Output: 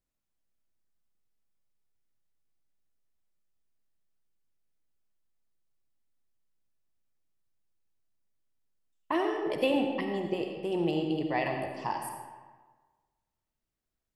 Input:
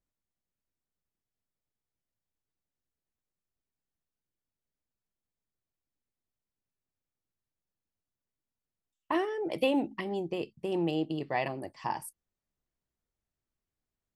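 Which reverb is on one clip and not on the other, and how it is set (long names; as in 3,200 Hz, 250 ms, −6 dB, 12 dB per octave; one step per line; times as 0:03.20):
comb and all-pass reverb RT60 1.4 s, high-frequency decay 0.7×, pre-delay 30 ms, DRR 3 dB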